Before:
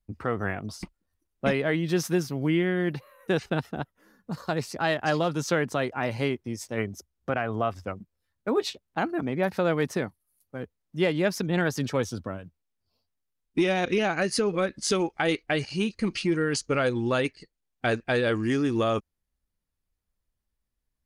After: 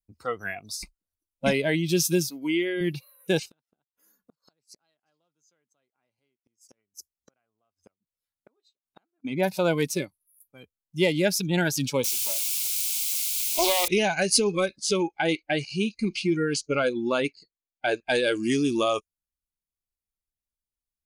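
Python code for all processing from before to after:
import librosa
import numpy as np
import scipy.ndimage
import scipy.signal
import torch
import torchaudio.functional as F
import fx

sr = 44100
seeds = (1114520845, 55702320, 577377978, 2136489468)

y = fx.chain(x, sr, fx.highpass(hz=290.0, slope=12),
    fx.high_shelf(hz=6500.0, db=-4.5), at=(2.3, 2.81))
y = fx.chain(y, sr, fx.gate_flip(shuts_db=-27.0, range_db=-36),
    fx.low_shelf(hz=110.0, db=-11.0), at=(3.41, 9.25))
y = fx.chain(y, sr, fx.highpass(hz=290.0, slope=24),
    fx.quant_dither(seeds[0], bits=6, dither='triangular'),
    fx.doppler_dist(depth_ms=0.9), at=(12.04, 13.88))
y = fx.chain(y, sr, fx.lowpass(hz=2400.0, slope=6),
    fx.low_shelf(hz=64.0, db=-7.5), at=(14.76, 18.1))
y = fx.noise_reduce_blind(y, sr, reduce_db=16)
y = fx.high_shelf(y, sr, hz=4300.0, db=11.5)
y = fx.notch(y, sr, hz=1800.0, q=9.9)
y = F.gain(torch.from_numpy(y), 1.5).numpy()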